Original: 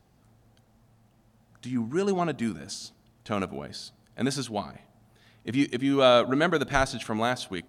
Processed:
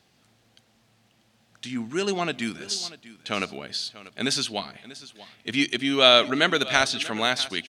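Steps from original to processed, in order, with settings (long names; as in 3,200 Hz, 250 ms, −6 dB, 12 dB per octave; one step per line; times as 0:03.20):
meter weighting curve D
single-tap delay 640 ms −17.5 dB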